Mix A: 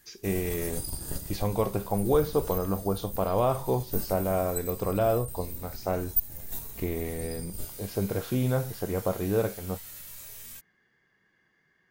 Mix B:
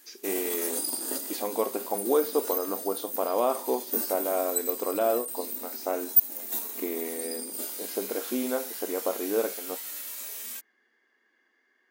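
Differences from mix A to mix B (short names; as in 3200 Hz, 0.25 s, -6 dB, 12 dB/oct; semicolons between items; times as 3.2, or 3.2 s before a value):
background +6.5 dB; master: add brick-wall FIR high-pass 220 Hz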